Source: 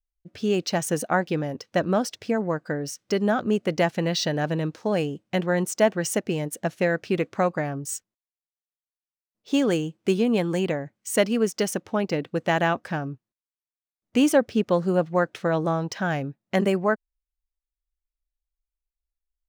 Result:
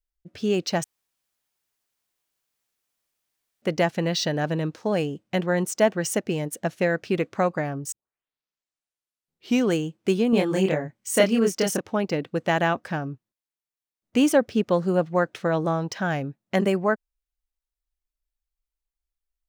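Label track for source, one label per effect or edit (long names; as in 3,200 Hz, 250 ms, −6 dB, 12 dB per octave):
0.840000	3.620000	fill with room tone
7.920000	7.920000	tape start 1.85 s
10.300000	11.810000	double-tracking delay 26 ms −2 dB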